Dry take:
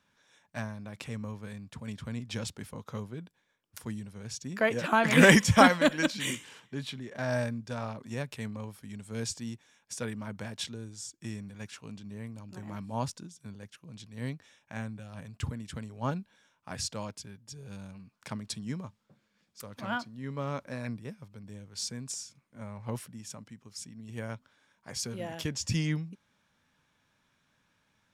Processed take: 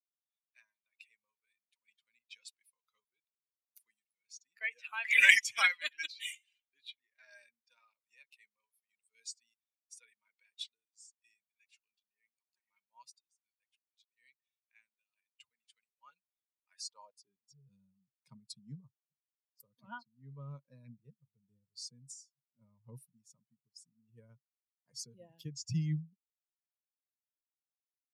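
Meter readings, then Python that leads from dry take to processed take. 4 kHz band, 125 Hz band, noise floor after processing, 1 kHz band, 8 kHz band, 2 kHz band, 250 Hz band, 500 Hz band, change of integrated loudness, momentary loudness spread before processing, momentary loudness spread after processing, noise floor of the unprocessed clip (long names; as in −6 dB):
−4.5 dB, −11.5 dB, below −85 dBFS, −16.5 dB, −9.0 dB, −1.5 dB, −19.0 dB, −29.0 dB, +1.0 dB, 19 LU, 26 LU, −74 dBFS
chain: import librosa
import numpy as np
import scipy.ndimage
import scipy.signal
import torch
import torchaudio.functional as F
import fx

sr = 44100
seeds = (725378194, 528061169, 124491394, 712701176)

y = fx.bin_expand(x, sr, power=2.0)
y = fx.filter_sweep_highpass(y, sr, from_hz=2200.0, to_hz=140.0, start_s=16.69, end_s=17.56, q=4.6)
y = y * 10.0 ** (-4.0 / 20.0)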